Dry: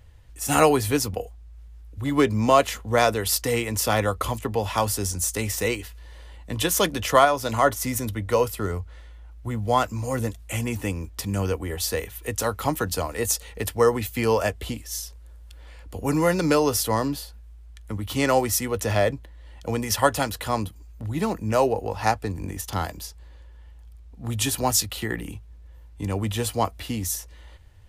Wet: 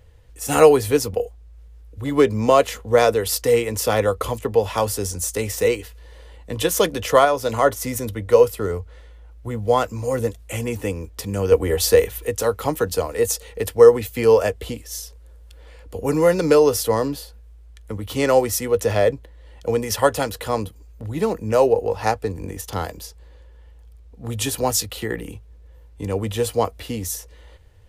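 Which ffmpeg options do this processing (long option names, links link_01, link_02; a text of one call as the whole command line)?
ffmpeg -i in.wav -filter_complex "[0:a]asplit=3[link_01][link_02][link_03];[link_01]atrim=end=11.522[link_04];[link_02]atrim=start=11.518:end=12.242,asetpts=PTS-STARTPTS,volume=6dB[link_05];[link_03]atrim=start=12.238[link_06];[link_04][link_05]acrossfade=duration=0.004:curve1=hsin:curve2=hsin[link_07];[link_07][link_06]acrossfade=duration=0.004:curve1=hsin:curve2=hsin,equalizer=frequency=470:width=3.2:gain=10" out.wav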